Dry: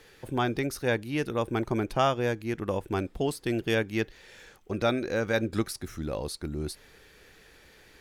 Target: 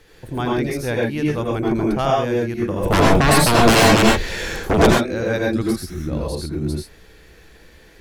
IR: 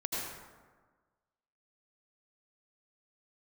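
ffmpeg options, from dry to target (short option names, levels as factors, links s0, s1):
-filter_complex "[0:a]lowshelf=f=150:g=9.5,asplit=3[s0][s1][s2];[s0]afade=t=out:st=2.82:d=0.02[s3];[s1]aeval=exprs='0.211*sin(PI/2*5.62*val(0)/0.211)':c=same,afade=t=in:st=2.82:d=0.02,afade=t=out:st=4.85:d=0.02[s4];[s2]afade=t=in:st=4.85:d=0.02[s5];[s3][s4][s5]amix=inputs=3:normalize=0[s6];[1:a]atrim=start_sample=2205,afade=t=out:st=0.19:d=0.01,atrim=end_sample=8820[s7];[s6][s7]afir=irnorm=-1:irlink=0,volume=1.33"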